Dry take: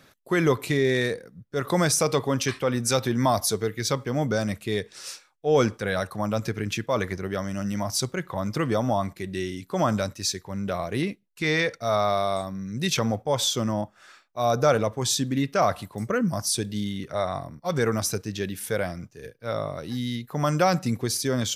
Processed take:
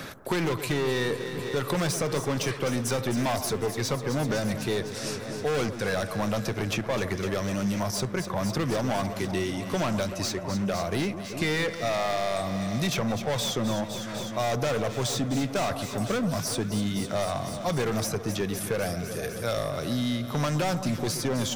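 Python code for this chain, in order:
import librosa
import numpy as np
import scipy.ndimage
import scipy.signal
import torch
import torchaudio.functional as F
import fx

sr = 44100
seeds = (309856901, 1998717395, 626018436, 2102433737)

y = fx.high_shelf(x, sr, hz=4300.0, db=11.5, at=(18.82, 19.7))
y = np.clip(y, -10.0 ** (-24.0 / 20.0), 10.0 ** (-24.0 / 20.0))
y = fx.echo_alternate(y, sr, ms=126, hz=1300.0, feedback_pct=84, wet_db=-11.5)
y = fx.band_squash(y, sr, depth_pct=70)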